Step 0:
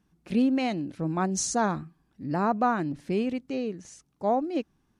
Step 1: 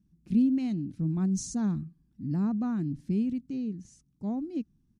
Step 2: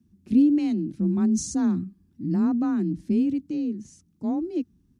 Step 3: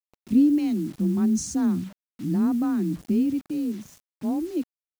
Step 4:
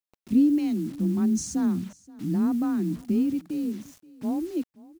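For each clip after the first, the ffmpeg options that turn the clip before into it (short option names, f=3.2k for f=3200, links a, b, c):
-af "firequalizer=gain_entry='entry(210,0);entry(520,-23);entry(5500,-12)':delay=0.05:min_phase=1,volume=3dB"
-af "afreqshift=29,volume=5.5dB"
-af "acrusher=bits=7:mix=0:aa=0.000001"
-af "aecho=1:1:527:0.0794,volume=-1.5dB"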